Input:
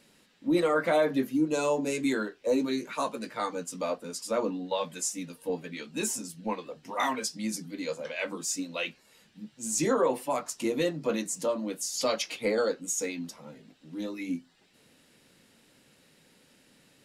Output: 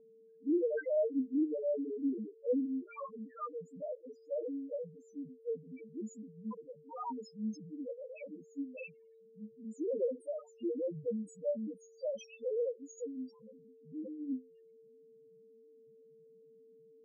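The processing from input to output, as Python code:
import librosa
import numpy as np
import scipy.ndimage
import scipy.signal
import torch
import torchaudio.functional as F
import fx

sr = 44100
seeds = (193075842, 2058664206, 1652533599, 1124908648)

y = fx.spec_topn(x, sr, count=1)
y = y + 10.0 ** (-58.0 / 20.0) * np.sin(2.0 * np.pi * 450.0 * np.arange(len(y)) / sr)
y = fx.env_lowpass(y, sr, base_hz=740.0, full_db=-34.5)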